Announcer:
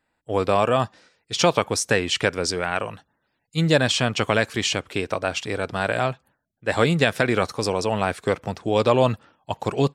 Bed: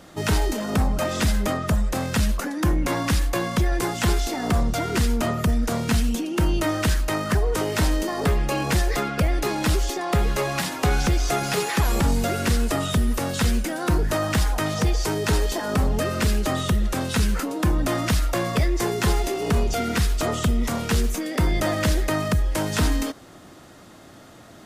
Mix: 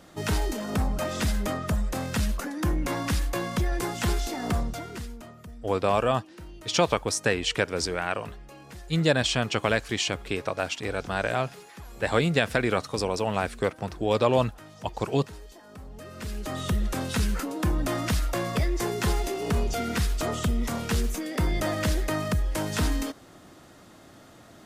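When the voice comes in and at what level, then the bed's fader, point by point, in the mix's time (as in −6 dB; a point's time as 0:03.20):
5.35 s, −4.0 dB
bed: 0:04.53 −5 dB
0:05.33 −23 dB
0:15.84 −23 dB
0:16.73 −4.5 dB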